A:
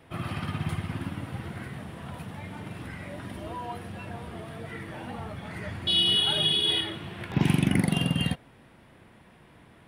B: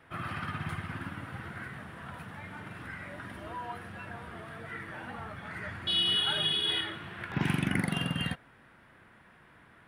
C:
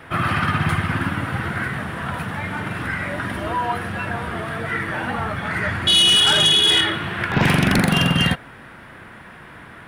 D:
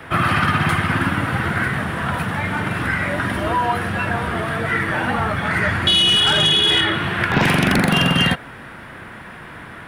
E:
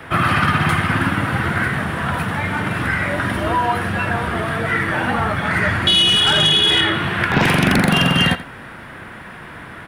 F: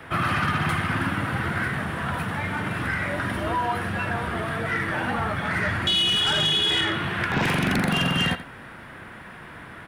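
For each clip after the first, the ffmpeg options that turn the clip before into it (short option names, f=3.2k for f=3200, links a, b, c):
-af "equalizer=f=1.5k:w=1.3:g=11.5,volume=-7dB"
-af "aeval=exprs='0.178*sin(PI/2*2.82*val(0)/0.178)':c=same,volume=4dB"
-filter_complex "[0:a]acrossover=split=210|3600[a][b][c];[a]acompressor=threshold=-25dB:ratio=4[d];[b]acompressor=threshold=-19dB:ratio=4[e];[c]acompressor=threshold=-33dB:ratio=4[f];[d][e][f]amix=inputs=3:normalize=0,volume=4.5dB"
-af "aecho=1:1:85:0.168,volume=1dB"
-af "asoftclip=type=tanh:threshold=-9dB,volume=-6dB"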